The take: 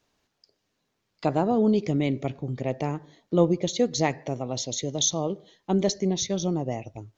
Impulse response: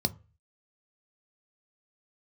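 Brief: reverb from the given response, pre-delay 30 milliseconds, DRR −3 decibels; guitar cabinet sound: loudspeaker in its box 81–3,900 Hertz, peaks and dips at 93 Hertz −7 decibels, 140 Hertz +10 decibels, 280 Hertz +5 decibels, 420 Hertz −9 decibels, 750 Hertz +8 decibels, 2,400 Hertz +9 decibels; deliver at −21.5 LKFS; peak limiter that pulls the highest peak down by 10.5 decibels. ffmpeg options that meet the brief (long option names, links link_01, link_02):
-filter_complex "[0:a]alimiter=limit=-17.5dB:level=0:latency=1,asplit=2[link_01][link_02];[1:a]atrim=start_sample=2205,adelay=30[link_03];[link_02][link_03]afir=irnorm=-1:irlink=0,volume=-3dB[link_04];[link_01][link_04]amix=inputs=2:normalize=0,highpass=81,equalizer=frequency=93:width_type=q:width=4:gain=-7,equalizer=frequency=140:width_type=q:width=4:gain=10,equalizer=frequency=280:width_type=q:width=4:gain=5,equalizer=frequency=420:width_type=q:width=4:gain=-9,equalizer=frequency=750:width_type=q:width=4:gain=8,equalizer=frequency=2400:width_type=q:width=4:gain=9,lowpass=frequency=3900:width=0.5412,lowpass=frequency=3900:width=1.3066,volume=-6dB"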